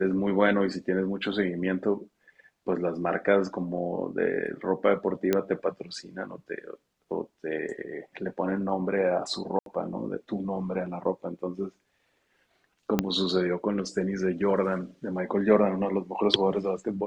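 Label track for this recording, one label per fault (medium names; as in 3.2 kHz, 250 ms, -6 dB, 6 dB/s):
5.330000	5.330000	pop -10 dBFS
9.590000	9.660000	dropout 72 ms
12.990000	12.990000	pop -9 dBFS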